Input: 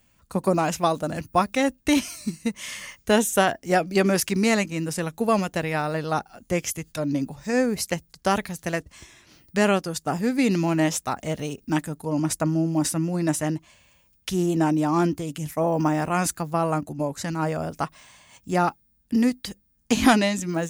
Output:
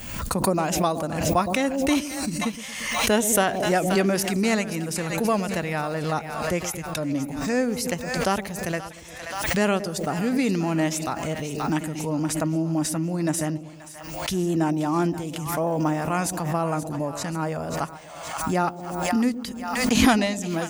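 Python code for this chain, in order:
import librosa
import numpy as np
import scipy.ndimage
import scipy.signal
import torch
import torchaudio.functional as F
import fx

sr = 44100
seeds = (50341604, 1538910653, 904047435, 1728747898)

p1 = x + fx.echo_split(x, sr, split_hz=680.0, low_ms=115, high_ms=529, feedback_pct=52, wet_db=-13.0, dry=0)
p2 = fx.pre_swell(p1, sr, db_per_s=44.0)
y = F.gain(torch.from_numpy(p2), -2.0).numpy()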